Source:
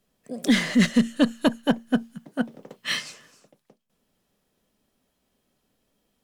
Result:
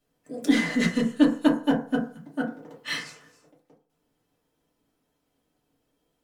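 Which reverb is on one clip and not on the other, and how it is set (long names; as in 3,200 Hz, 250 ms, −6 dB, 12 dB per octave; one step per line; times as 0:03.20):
feedback delay network reverb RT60 0.44 s, low-frequency decay 0.85×, high-frequency decay 0.35×, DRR −4 dB
level −7 dB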